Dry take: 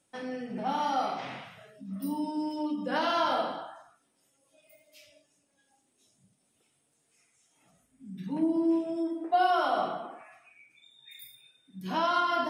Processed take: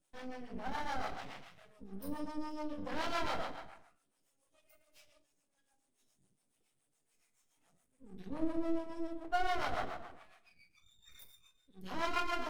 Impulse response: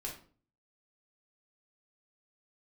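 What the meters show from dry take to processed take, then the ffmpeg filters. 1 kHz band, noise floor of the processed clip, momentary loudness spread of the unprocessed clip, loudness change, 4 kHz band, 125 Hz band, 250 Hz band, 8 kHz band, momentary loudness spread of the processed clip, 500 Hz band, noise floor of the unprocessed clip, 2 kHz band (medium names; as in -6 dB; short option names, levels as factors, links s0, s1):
-10.5 dB, -80 dBFS, 20 LU, -9.5 dB, -8.0 dB, -6.5 dB, -10.5 dB, no reading, 21 LU, -9.5 dB, -73 dBFS, -5.5 dB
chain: -filter_complex "[0:a]aeval=exprs='max(val(0),0)':c=same,acrossover=split=490[s0][s1];[s0]aeval=exprs='val(0)*(1-0.7/2+0.7/2*cos(2*PI*7.1*n/s))':c=same[s2];[s1]aeval=exprs='val(0)*(1-0.7/2-0.7/2*cos(2*PI*7.1*n/s))':c=same[s3];[s2][s3]amix=inputs=2:normalize=0,asplit=2[s4][s5];[1:a]atrim=start_sample=2205[s6];[s5][s6]afir=irnorm=-1:irlink=0,volume=0.0794[s7];[s4][s7]amix=inputs=2:normalize=0,volume=0.794"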